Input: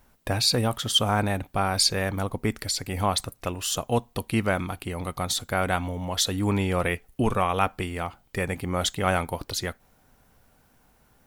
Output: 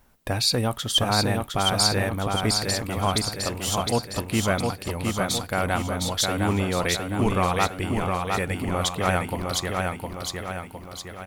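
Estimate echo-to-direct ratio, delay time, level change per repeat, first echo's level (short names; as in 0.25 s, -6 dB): -2.0 dB, 0.71 s, -6.0 dB, -3.5 dB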